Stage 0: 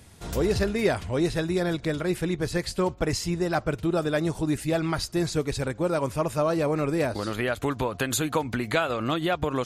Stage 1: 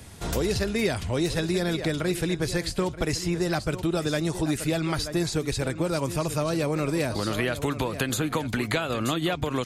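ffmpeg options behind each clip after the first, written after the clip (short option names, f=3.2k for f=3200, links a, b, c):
-filter_complex "[0:a]aecho=1:1:929:0.188,acrossover=split=300|2400[a][b][c];[a]acompressor=threshold=-34dB:ratio=4[d];[b]acompressor=threshold=-35dB:ratio=4[e];[c]acompressor=threshold=-37dB:ratio=4[f];[d][e][f]amix=inputs=3:normalize=0,volume=6dB"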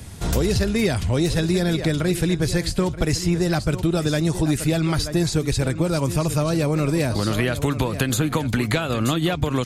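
-filter_complex "[0:a]bass=f=250:g=6,treble=f=4k:g=2,asplit=2[a][b];[b]aeval=exprs='clip(val(0),-1,0.075)':c=same,volume=-8dB[c];[a][c]amix=inputs=2:normalize=0"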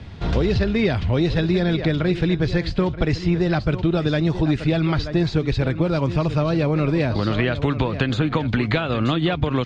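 -af "lowpass=f=4k:w=0.5412,lowpass=f=4k:w=1.3066,volume=1dB"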